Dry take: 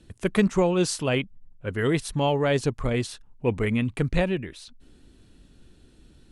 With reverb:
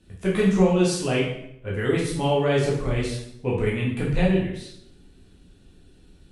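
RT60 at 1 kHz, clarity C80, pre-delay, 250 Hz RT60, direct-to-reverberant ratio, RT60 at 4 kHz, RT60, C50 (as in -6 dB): 0.70 s, 7.0 dB, 9 ms, 0.90 s, -5.5 dB, 0.65 s, 0.75 s, 3.0 dB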